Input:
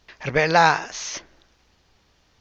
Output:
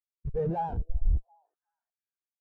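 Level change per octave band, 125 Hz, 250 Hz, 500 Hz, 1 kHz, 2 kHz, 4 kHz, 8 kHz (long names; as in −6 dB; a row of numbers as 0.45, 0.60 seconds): −1.5 dB, −7.5 dB, −11.0 dB, −15.5 dB, −36.5 dB, below −35 dB, can't be measured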